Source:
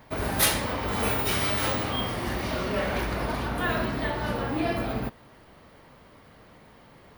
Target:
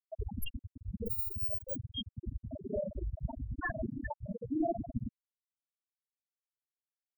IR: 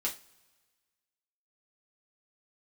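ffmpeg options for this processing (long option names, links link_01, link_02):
-af "aeval=exprs='clip(val(0),-1,0.0355)':channel_layout=same,afftfilt=real='re*gte(hypot(re,im),0.2)':imag='im*gte(hypot(re,im),0.2)':win_size=1024:overlap=0.75"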